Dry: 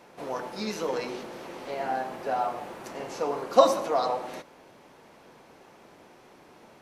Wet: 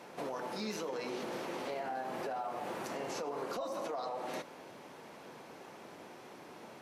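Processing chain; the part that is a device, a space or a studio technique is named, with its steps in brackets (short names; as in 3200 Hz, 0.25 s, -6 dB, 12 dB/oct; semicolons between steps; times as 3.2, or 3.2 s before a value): podcast mastering chain (HPF 110 Hz 12 dB/oct; de-esser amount 85%; compressor 4:1, threshold -35 dBFS, peak gain reduction 18 dB; limiter -32.5 dBFS, peak gain reduction 11 dB; gain +2.5 dB; MP3 96 kbps 44100 Hz)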